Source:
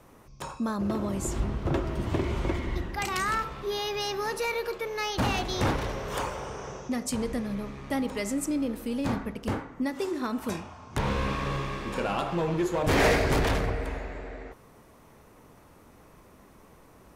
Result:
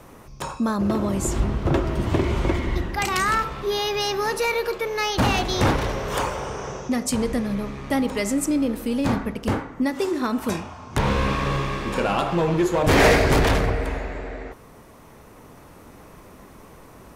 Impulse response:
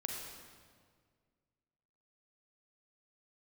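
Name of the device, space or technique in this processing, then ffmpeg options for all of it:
ducked reverb: -filter_complex "[0:a]asplit=3[link_01][link_02][link_03];[1:a]atrim=start_sample=2205[link_04];[link_02][link_04]afir=irnorm=-1:irlink=0[link_05];[link_03]apad=whole_len=756399[link_06];[link_05][link_06]sidechaincompress=threshold=-51dB:ratio=8:attack=16:release=1240,volume=-6.5dB[link_07];[link_01][link_07]amix=inputs=2:normalize=0,volume=6.5dB"

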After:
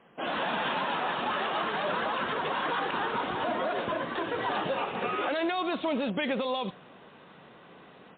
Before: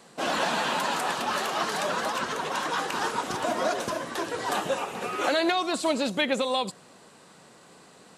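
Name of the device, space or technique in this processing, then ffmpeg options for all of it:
low-bitrate web radio: -af "dynaudnorm=framelen=280:gausssize=3:maxgain=7dB,alimiter=limit=-15.5dB:level=0:latency=1:release=35,volume=-5dB" -ar 8000 -c:a libmp3lame -b:a 24k

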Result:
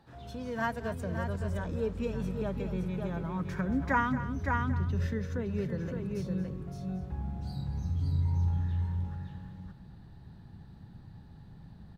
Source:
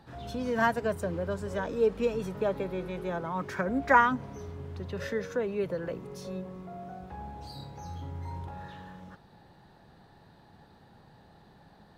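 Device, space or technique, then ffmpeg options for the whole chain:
ducked delay: -filter_complex "[0:a]asplit=3[link_01][link_02][link_03];[link_02]adelay=565,volume=-3.5dB[link_04];[link_03]apad=whole_len=553048[link_05];[link_04][link_05]sidechaincompress=threshold=-32dB:ratio=8:attack=48:release=416[link_06];[link_01][link_06]amix=inputs=2:normalize=0,asubboost=boost=7:cutoff=200,aecho=1:1:229:0.211,volume=-6dB"

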